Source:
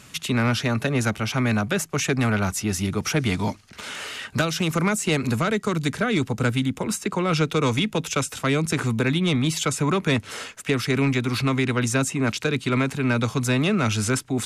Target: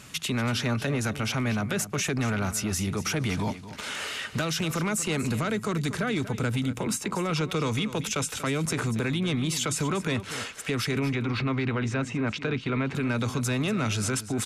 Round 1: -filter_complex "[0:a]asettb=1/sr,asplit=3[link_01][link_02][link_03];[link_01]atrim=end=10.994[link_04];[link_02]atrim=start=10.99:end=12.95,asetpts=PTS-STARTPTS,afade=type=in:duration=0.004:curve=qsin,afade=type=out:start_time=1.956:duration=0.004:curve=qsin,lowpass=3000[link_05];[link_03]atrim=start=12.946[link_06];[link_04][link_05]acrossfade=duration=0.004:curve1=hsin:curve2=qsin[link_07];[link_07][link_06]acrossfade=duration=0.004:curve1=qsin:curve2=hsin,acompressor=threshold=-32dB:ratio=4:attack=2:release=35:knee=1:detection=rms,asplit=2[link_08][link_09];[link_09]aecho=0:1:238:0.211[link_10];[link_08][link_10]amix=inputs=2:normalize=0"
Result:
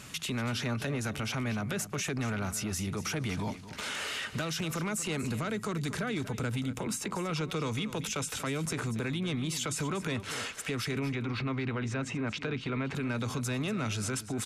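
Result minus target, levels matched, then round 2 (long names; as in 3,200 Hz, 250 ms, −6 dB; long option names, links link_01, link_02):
downward compressor: peak gain reduction +5.5 dB
-filter_complex "[0:a]asettb=1/sr,asplit=3[link_01][link_02][link_03];[link_01]atrim=end=10.994[link_04];[link_02]atrim=start=10.99:end=12.95,asetpts=PTS-STARTPTS,afade=type=in:duration=0.004:curve=qsin,afade=type=out:start_time=1.956:duration=0.004:curve=qsin,lowpass=3000[link_05];[link_03]atrim=start=12.946[link_06];[link_04][link_05]acrossfade=duration=0.004:curve1=hsin:curve2=qsin[link_07];[link_07][link_06]acrossfade=duration=0.004:curve1=qsin:curve2=hsin,acompressor=threshold=-24.5dB:ratio=4:attack=2:release=35:knee=1:detection=rms,asplit=2[link_08][link_09];[link_09]aecho=0:1:238:0.211[link_10];[link_08][link_10]amix=inputs=2:normalize=0"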